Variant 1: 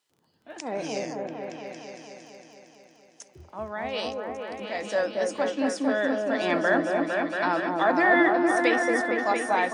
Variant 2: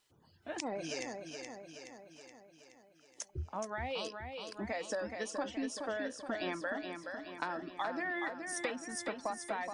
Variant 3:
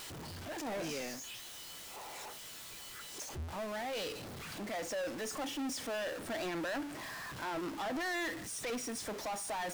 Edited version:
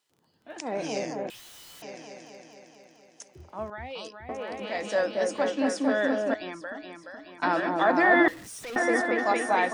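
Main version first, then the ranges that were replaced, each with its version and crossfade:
1
1.30–1.82 s: from 3
3.70–4.29 s: from 2
6.34–7.43 s: from 2
8.28–8.76 s: from 3

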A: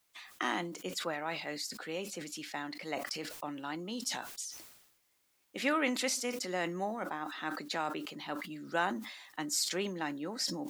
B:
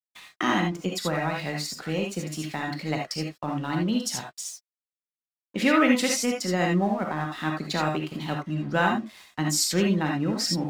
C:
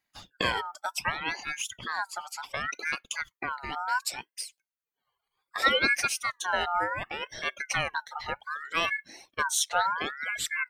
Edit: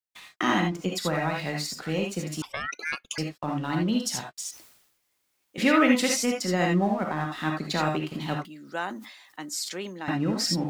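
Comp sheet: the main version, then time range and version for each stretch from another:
B
2.42–3.18 s: from C
4.51–5.58 s: from A
8.45–10.08 s: from A

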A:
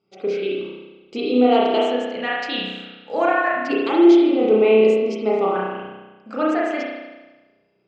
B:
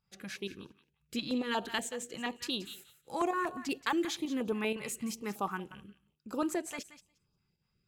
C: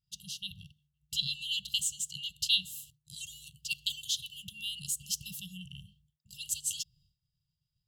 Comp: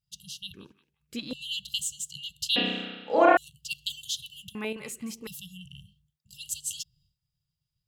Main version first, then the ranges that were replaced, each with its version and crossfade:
C
0.54–1.33 s: from B
2.56–3.37 s: from A
4.55–5.27 s: from B

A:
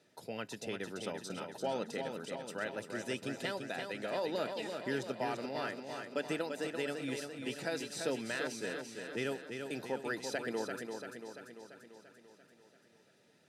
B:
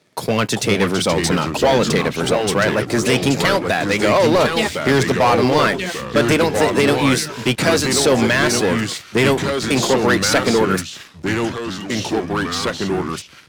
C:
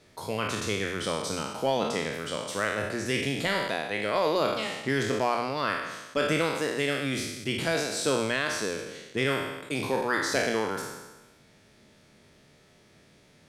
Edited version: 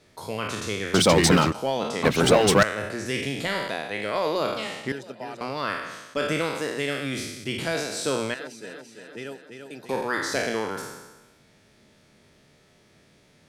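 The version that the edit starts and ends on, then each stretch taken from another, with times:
C
0.94–1.52 s: from B
2.03–2.63 s: from B
4.92–5.41 s: from A
8.34–9.89 s: from A

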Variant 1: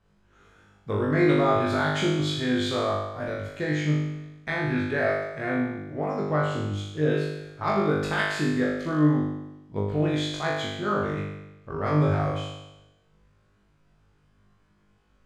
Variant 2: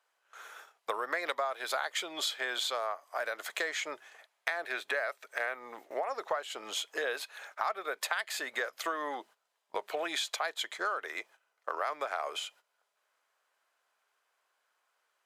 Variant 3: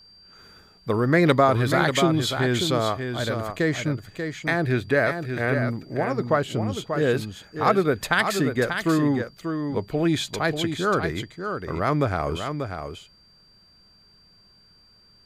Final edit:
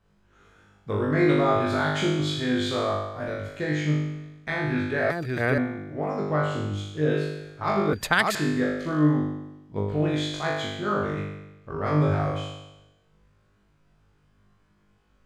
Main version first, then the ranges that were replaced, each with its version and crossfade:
1
5.10–5.58 s: from 3
7.93–8.35 s: from 3
not used: 2

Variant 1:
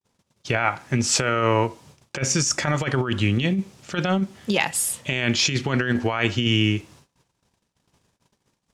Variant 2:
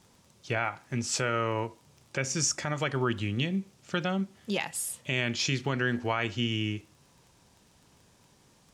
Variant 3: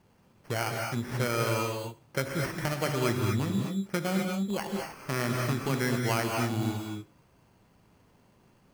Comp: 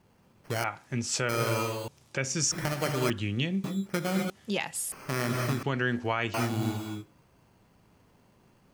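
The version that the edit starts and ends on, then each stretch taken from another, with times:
3
0.64–1.29 s: from 2
1.88–2.52 s: from 2
3.10–3.64 s: from 2
4.30–4.92 s: from 2
5.63–6.34 s: from 2
not used: 1

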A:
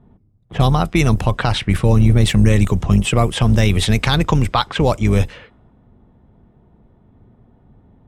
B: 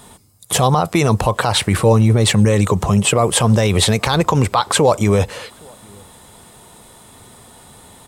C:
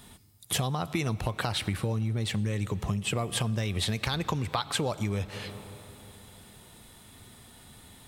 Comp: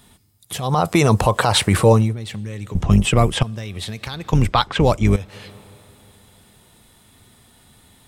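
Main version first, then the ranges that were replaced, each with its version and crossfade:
C
0.72–2.04 s: from B, crossfade 0.24 s
2.75–3.43 s: from A
4.33–5.16 s: from A

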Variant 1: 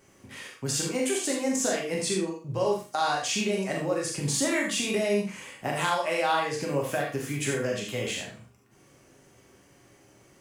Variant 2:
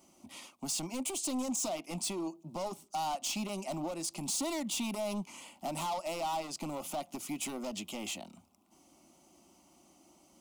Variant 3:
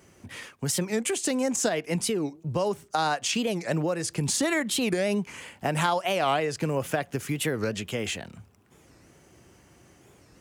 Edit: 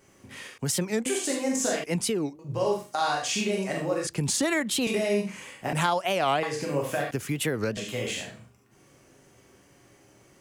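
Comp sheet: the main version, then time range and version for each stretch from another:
1
0.58–1.06 s: from 3
1.84–2.39 s: from 3
4.07–4.87 s: from 3
5.73–6.43 s: from 3
7.11–7.77 s: from 3
not used: 2

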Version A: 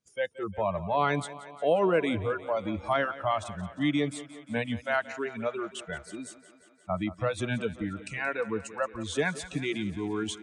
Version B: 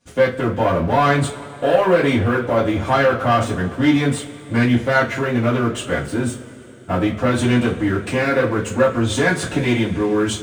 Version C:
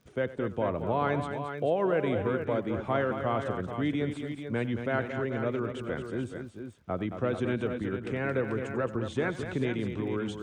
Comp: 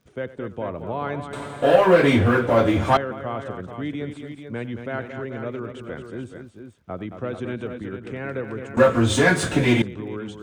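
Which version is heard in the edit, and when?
C
1.33–2.97 s: from B
8.77–9.82 s: from B
not used: A

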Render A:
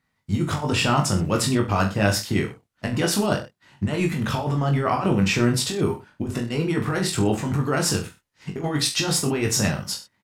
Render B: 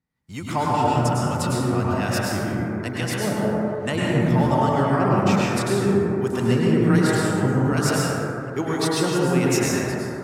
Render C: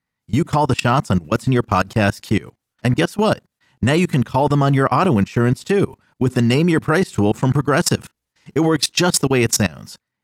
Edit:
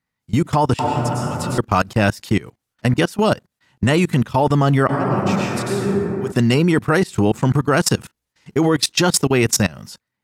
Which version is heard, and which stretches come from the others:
C
0.79–1.58 s: from B
4.89–6.32 s: from B
not used: A

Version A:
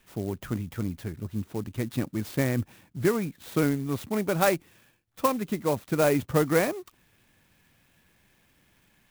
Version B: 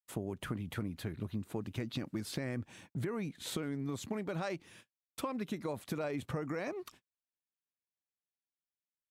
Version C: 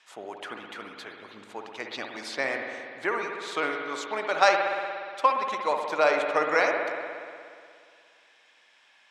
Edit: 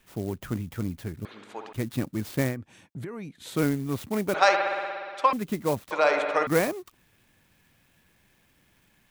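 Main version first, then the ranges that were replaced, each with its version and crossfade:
A
1.25–1.73 s: from C
2.52–3.56 s: from B, crossfade 0.10 s
4.34–5.33 s: from C
5.91–6.47 s: from C

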